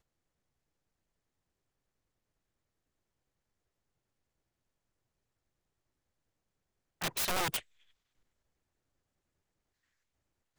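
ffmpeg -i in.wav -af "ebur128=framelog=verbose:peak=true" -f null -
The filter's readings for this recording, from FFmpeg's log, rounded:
Integrated loudness:
  I:         -33.6 LUFS
  Threshold: -44.1 LUFS
Loudness range:
  LRA:         4.8 LU
  Threshold: -59.5 LUFS
  LRA low:   -43.7 LUFS
  LRA high:  -38.9 LUFS
True peak:
  Peak:      -21.3 dBFS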